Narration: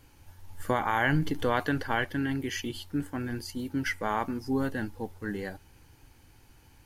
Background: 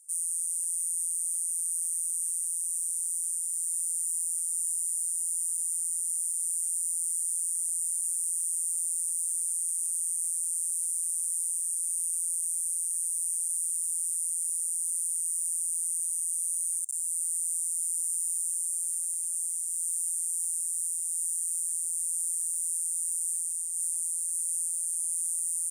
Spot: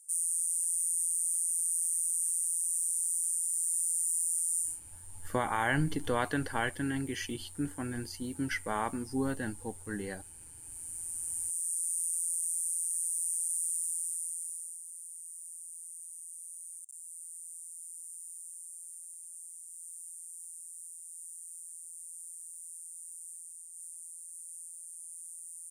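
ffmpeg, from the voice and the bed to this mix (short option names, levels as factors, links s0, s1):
-filter_complex "[0:a]adelay=4650,volume=0.668[s0];[1:a]volume=7.5,afade=t=out:st=4.58:d=0.22:silence=0.1,afade=t=in:st=10.58:d=1.18:silence=0.125893,afade=t=out:st=13.73:d=1.1:silence=0.223872[s1];[s0][s1]amix=inputs=2:normalize=0"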